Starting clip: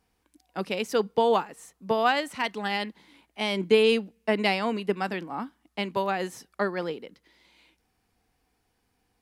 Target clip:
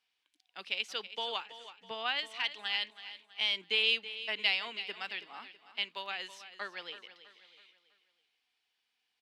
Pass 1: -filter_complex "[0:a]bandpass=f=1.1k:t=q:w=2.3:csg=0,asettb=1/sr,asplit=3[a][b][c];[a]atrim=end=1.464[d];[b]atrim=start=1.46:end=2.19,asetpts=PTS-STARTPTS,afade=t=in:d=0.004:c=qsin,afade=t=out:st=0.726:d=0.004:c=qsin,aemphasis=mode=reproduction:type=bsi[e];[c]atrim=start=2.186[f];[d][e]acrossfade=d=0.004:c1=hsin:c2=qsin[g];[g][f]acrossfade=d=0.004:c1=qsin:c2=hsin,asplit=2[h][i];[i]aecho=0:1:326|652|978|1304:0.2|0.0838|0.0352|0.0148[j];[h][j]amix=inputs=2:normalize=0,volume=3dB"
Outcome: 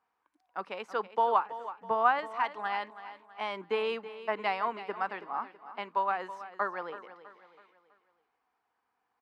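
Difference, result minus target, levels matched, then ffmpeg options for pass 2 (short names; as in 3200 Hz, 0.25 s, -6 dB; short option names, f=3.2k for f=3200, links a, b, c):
4000 Hz band -15.5 dB
-filter_complex "[0:a]bandpass=f=3.2k:t=q:w=2.3:csg=0,asettb=1/sr,asplit=3[a][b][c];[a]atrim=end=1.464[d];[b]atrim=start=1.46:end=2.19,asetpts=PTS-STARTPTS,afade=t=in:d=0.004:c=qsin,afade=t=out:st=0.726:d=0.004:c=qsin,aemphasis=mode=reproduction:type=bsi[e];[c]atrim=start=2.186[f];[d][e]acrossfade=d=0.004:c1=hsin:c2=qsin[g];[g][f]acrossfade=d=0.004:c1=qsin:c2=hsin,asplit=2[h][i];[i]aecho=0:1:326|652|978|1304:0.2|0.0838|0.0352|0.0148[j];[h][j]amix=inputs=2:normalize=0,volume=3dB"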